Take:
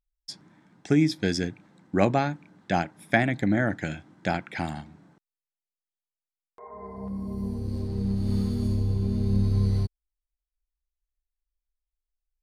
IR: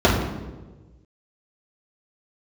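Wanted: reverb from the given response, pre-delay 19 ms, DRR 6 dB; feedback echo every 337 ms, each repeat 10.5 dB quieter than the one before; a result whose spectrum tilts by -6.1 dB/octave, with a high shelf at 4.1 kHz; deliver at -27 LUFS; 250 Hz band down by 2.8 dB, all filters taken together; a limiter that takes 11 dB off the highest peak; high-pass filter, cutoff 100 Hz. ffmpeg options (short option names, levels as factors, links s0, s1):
-filter_complex "[0:a]highpass=100,equalizer=f=250:t=o:g=-3.5,highshelf=f=4100:g=8,alimiter=limit=0.168:level=0:latency=1,aecho=1:1:337|674|1011:0.299|0.0896|0.0269,asplit=2[s0][s1];[1:a]atrim=start_sample=2205,adelay=19[s2];[s1][s2]afir=irnorm=-1:irlink=0,volume=0.0335[s3];[s0][s3]amix=inputs=2:normalize=0"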